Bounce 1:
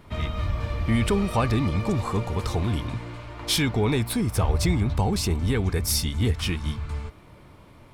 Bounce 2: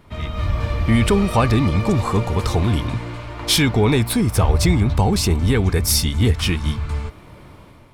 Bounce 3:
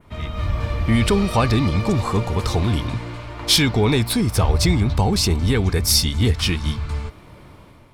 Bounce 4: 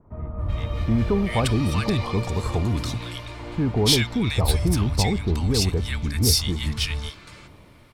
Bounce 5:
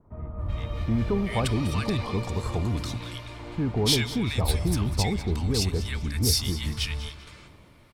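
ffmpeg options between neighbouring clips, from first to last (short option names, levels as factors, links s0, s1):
-af "dynaudnorm=f=110:g=7:m=2.24"
-af "adynamicequalizer=threshold=0.0141:dfrequency=4600:dqfactor=1.5:tfrequency=4600:tqfactor=1.5:attack=5:release=100:ratio=0.375:range=3:mode=boostabove:tftype=bell,volume=0.841"
-filter_complex "[0:a]acrossover=split=1200[s0][s1];[s1]adelay=380[s2];[s0][s2]amix=inputs=2:normalize=0,volume=0.668"
-af "aecho=1:1:196|392|588:0.168|0.0537|0.0172,volume=0.631"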